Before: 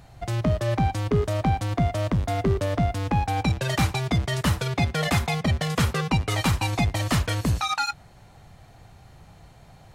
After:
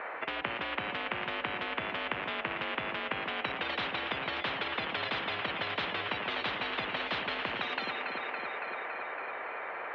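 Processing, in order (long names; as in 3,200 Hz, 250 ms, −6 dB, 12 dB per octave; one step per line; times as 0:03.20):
single-sideband voice off tune −55 Hz 600–2,300 Hz
delay that swaps between a low-pass and a high-pass 140 ms, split 940 Hz, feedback 78%, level −10.5 dB
every bin compressed towards the loudest bin 10 to 1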